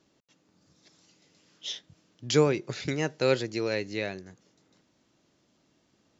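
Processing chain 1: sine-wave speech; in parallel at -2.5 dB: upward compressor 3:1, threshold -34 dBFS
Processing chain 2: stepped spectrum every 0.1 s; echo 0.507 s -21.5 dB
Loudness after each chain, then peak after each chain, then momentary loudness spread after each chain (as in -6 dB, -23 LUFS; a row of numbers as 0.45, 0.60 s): -23.5, -30.5 LUFS; -7.5, -11.0 dBFS; 21, 17 LU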